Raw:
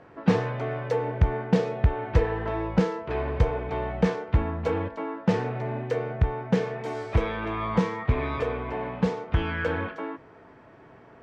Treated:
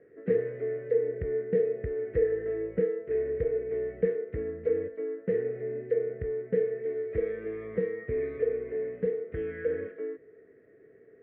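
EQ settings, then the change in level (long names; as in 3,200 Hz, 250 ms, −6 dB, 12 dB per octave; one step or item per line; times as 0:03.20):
pair of resonant band-passes 920 Hz, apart 2.1 octaves
high-frequency loss of the air 170 metres
spectral tilt −4 dB per octave
0.0 dB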